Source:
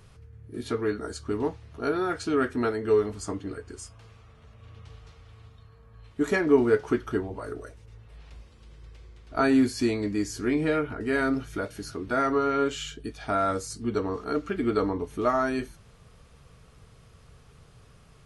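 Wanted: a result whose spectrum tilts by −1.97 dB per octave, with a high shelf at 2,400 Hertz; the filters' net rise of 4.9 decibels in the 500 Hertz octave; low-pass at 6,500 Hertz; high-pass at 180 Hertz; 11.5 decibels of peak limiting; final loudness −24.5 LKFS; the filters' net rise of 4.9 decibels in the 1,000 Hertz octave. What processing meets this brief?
high-pass filter 180 Hz
low-pass filter 6,500 Hz
parametric band 500 Hz +5 dB
parametric band 1,000 Hz +8 dB
high-shelf EQ 2,400 Hz −7 dB
level +3.5 dB
brickwall limiter −13 dBFS

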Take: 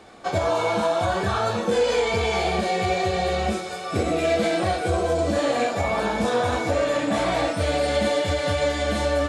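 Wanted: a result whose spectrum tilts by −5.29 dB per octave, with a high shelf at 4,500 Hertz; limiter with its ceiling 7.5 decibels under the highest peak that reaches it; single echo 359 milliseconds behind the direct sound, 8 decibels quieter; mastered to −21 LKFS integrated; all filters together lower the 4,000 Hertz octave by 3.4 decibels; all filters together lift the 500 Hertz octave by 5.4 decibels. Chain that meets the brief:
parametric band 500 Hz +6.5 dB
parametric band 4,000 Hz −6 dB
high-shelf EQ 4,500 Hz +3.5 dB
brickwall limiter −14 dBFS
single-tap delay 359 ms −8 dB
level +1 dB

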